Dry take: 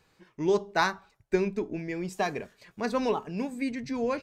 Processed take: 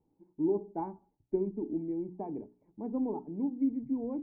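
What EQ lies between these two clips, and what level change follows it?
cascade formant filter u; distance through air 460 m; hum notches 60/120/180/240/300/360/420 Hz; +6.0 dB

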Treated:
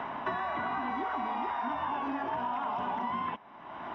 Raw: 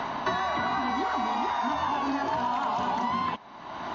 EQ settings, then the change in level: Savitzky-Golay filter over 25 samples; bass shelf 130 Hz -4.5 dB; -5.0 dB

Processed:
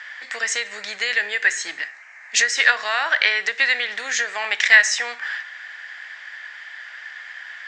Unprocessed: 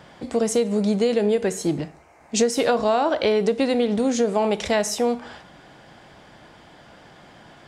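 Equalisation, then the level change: resonant high-pass 1.8 kHz, resonance Q 7.8; steep low-pass 7.6 kHz 48 dB/octave; +5.5 dB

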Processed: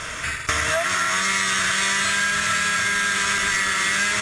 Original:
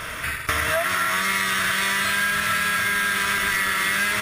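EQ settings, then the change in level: resonant low-pass 7.2 kHz, resonance Q 3.5; 0.0 dB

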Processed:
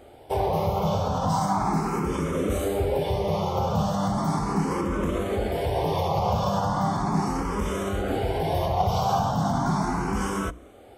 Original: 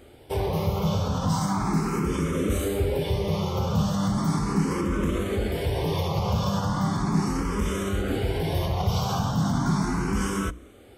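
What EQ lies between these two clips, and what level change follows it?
peaking EQ 730 Hz +11.5 dB 1 oct; -2.5 dB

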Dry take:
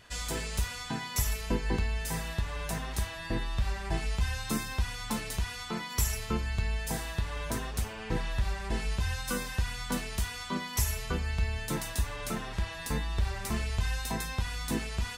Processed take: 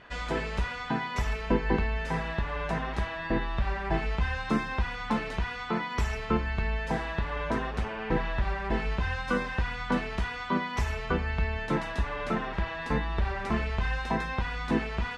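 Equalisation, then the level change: low-pass 2.1 kHz 12 dB/octave; peaking EQ 100 Hz -11.5 dB 0.3 oct; bass shelf 140 Hz -7 dB; +7.5 dB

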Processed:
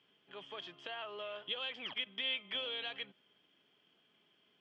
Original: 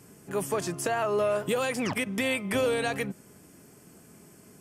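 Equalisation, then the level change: high-pass 820 Hz 6 dB/octave; four-pole ladder low-pass 3.3 kHz, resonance 90%; distance through air 59 m; -1.5 dB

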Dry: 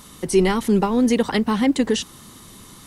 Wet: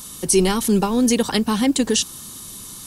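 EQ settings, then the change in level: tone controls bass +2 dB, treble +4 dB; treble shelf 3.7 kHz +9.5 dB; band-stop 2 kHz, Q 8.8; -1.0 dB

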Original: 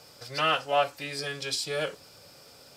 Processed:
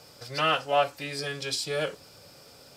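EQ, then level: bass shelf 490 Hz +3 dB; 0.0 dB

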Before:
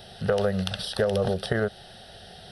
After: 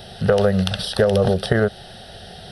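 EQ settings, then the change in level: bass shelf 440 Hz +3 dB; +6.0 dB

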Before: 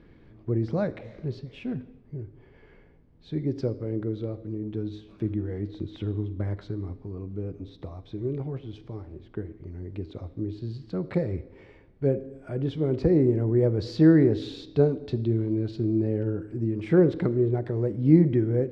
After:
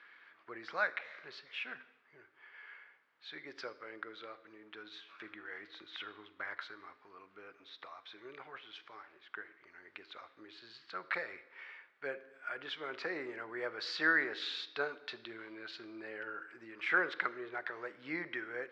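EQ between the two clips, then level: ladder band-pass 1.7 kHz, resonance 45%; treble shelf 2.1 kHz +9.5 dB; +13.5 dB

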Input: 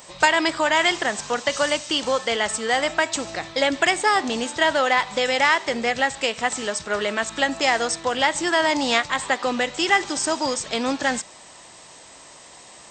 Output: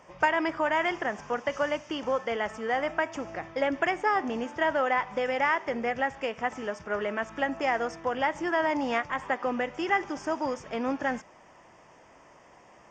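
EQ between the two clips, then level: boxcar filter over 11 samples; -5.0 dB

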